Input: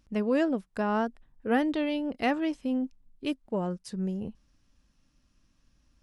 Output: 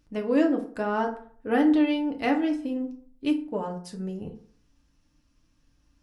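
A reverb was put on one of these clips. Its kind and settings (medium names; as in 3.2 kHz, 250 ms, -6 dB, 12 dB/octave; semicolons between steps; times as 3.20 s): FDN reverb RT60 0.51 s, low-frequency decay 1×, high-frequency decay 0.55×, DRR 1.5 dB; trim -1 dB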